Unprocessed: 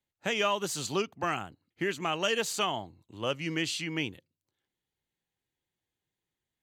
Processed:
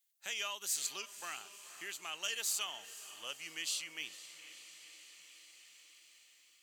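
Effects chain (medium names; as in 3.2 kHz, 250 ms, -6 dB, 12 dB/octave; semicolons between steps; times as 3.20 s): differentiator; echo that smears into a reverb 489 ms, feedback 56%, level -14 dB; tape noise reduction on one side only encoder only; trim +1 dB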